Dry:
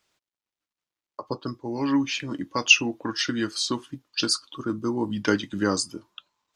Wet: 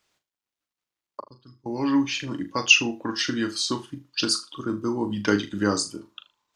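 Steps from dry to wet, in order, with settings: 1.2–1.66 passive tone stack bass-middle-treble 6-0-2; on a send: flutter echo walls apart 6.7 m, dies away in 0.25 s

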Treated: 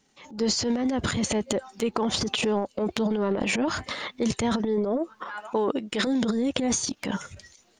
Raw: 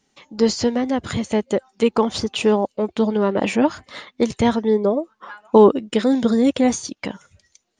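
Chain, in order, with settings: 5.4–6.07 low shelf 340 Hz -9 dB; transient shaper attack -7 dB, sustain +12 dB; compressor 10:1, threshold -22 dBFS, peak gain reduction 14 dB

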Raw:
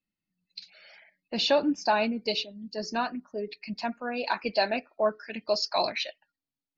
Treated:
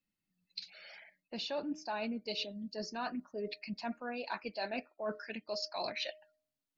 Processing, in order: de-hum 309.1 Hz, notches 2; reverse; compressor 6:1, threshold -36 dBFS, peak gain reduction 16.5 dB; reverse

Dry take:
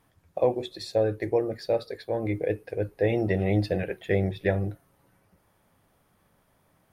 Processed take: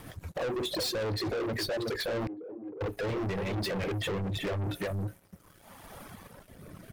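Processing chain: compressor 6:1, threshold -32 dBFS, peak gain reduction 14 dB; outdoor echo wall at 63 m, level -7 dB; rotary speaker horn 6.7 Hz, later 0.8 Hz, at 1.86; limiter -34 dBFS, peak gain reduction 11 dB; sine folder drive 4 dB, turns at -33.5 dBFS; reverb removal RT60 1.8 s; sample leveller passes 3; 2.27–2.81 ladder band-pass 360 Hz, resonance 50%; gain +3.5 dB

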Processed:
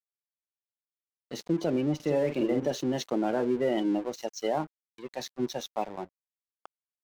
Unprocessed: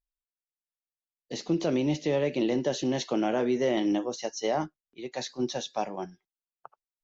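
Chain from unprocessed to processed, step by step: spectral gate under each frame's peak -25 dB strong; 1.95–2.72 doubler 47 ms -6 dB; crossover distortion -43.5 dBFS

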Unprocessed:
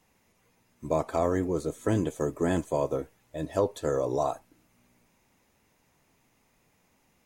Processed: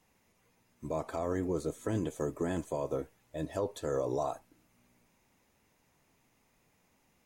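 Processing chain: limiter -20 dBFS, peak gain reduction 6.5 dB; gain -3 dB

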